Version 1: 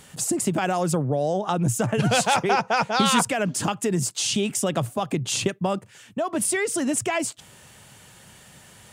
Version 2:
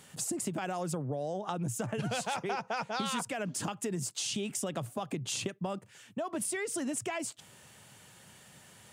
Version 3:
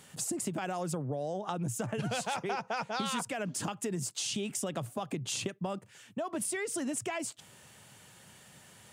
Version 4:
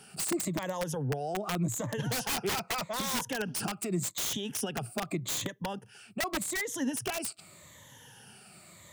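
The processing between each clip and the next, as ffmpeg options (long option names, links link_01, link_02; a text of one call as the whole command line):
ffmpeg -i in.wav -af "highpass=88,acompressor=threshold=-26dB:ratio=3,volume=-6.5dB" out.wav
ffmpeg -i in.wav -af anull out.wav
ffmpeg -i in.wav -filter_complex "[0:a]afftfilt=real='re*pow(10,14/40*sin(2*PI*(1.1*log(max(b,1)*sr/1024/100)/log(2)-(-0.84)*(pts-256)/sr)))':imag='im*pow(10,14/40*sin(2*PI*(1.1*log(max(b,1)*sr/1024/100)/log(2)-(-0.84)*(pts-256)/sr)))':win_size=1024:overlap=0.75,acrossover=split=270[link_01][link_02];[link_02]aeval=exprs='(mod(20*val(0)+1,2)-1)/20':channel_layout=same[link_03];[link_01][link_03]amix=inputs=2:normalize=0" out.wav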